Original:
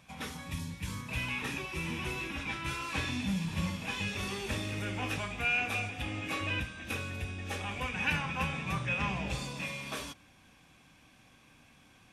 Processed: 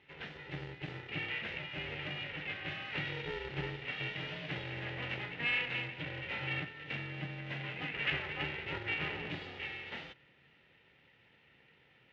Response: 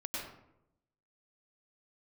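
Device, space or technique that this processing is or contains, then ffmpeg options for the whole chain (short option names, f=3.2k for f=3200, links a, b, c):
ring modulator pedal into a guitar cabinet: -af "aeval=exprs='val(0)*sgn(sin(2*PI*230*n/s))':c=same,highpass=81,equalizer=f=140:t=q:w=4:g=8,equalizer=f=220:t=q:w=4:g=7,equalizer=f=330:t=q:w=4:g=-3,equalizer=f=1.1k:t=q:w=4:g=-7,equalizer=f=1.9k:t=q:w=4:g=9,equalizer=f=2.8k:t=q:w=4:g=5,lowpass=f=3.7k:w=0.5412,lowpass=f=3.7k:w=1.3066,volume=-7dB"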